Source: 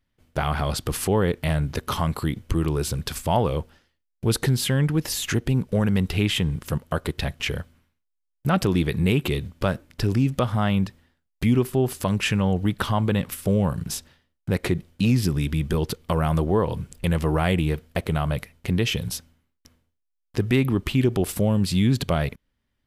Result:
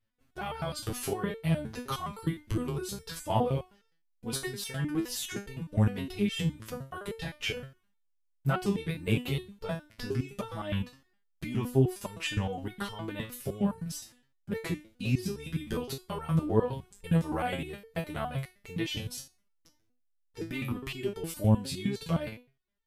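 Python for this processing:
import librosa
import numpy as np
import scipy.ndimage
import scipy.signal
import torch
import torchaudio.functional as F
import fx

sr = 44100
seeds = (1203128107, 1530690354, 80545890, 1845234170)

y = fx.resonator_held(x, sr, hz=9.7, low_hz=110.0, high_hz=450.0)
y = y * 10.0 ** (4.0 / 20.0)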